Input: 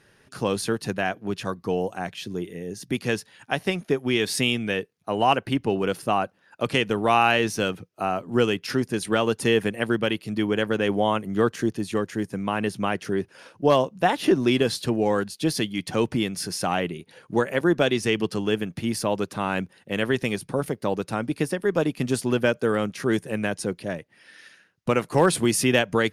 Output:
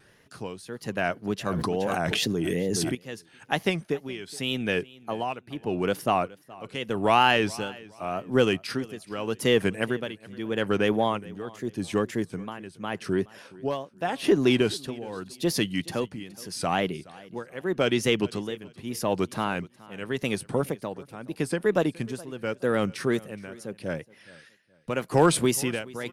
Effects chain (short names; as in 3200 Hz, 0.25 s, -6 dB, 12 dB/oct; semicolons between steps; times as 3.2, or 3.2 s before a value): tremolo 0.83 Hz, depth 85%; in parallel at -11 dB: soft clip -18.5 dBFS, distortion -11 dB; on the sum: wow and flutter 130 cents; on a send: feedback echo 0.421 s, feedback 30%, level -21.5 dB; 1.46–2.95 on the sum: fast leveller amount 100%; gain -1.5 dB